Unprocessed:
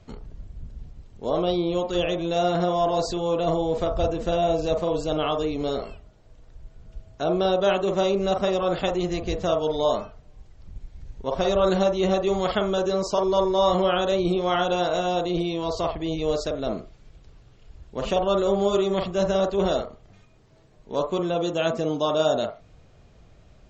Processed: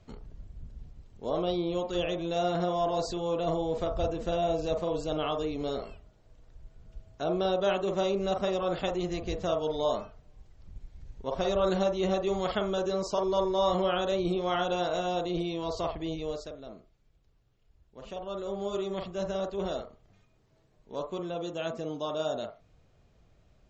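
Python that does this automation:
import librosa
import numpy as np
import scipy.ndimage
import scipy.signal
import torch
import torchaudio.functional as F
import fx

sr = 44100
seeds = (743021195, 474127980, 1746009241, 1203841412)

y = fx.gain(x, sr, db=fx.line((16.07, -6.0), (16.7, -18.0), (17.98, -18.0), (18.82, -10.0)))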